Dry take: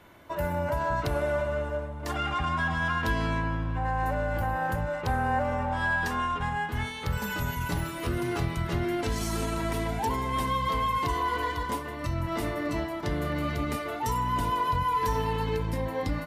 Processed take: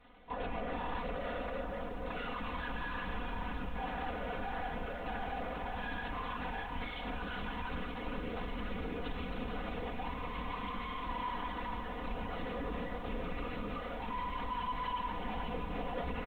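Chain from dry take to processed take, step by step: rattle on loud lows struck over -32 dBFS, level -29 dBFS; peaking EQ 1.7 kHz -3 dB 0.82 oct; saturation -34 dBFS, distortion -8 dB; frequency-shifting echo 481 ms, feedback 57%, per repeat -120 Hz, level -11 dB; gain riding within 4 dB 2 s; crossover distortion -55.5 dBFS; LPC vocoder at 8 kHz whisper; comb 4.1 ms, depth 94%; bit-crushed delay 465 ms, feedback 80%, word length 10-bit, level -13 dB; trim -5 dB

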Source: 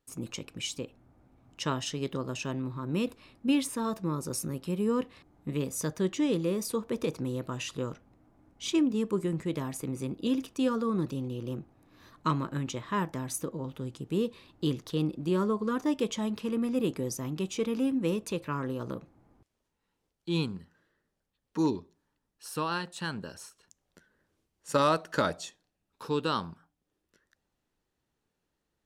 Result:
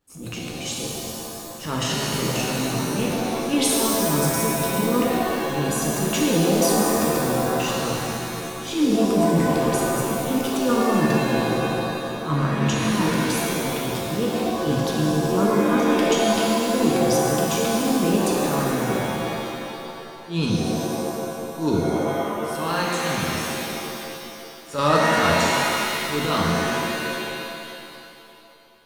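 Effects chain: transient shaper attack -11 dB, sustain +9 dB; pitch-shifted reverb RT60 2.5 s, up +7 st, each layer -2 dB, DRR -3 dB; trim +4 dB

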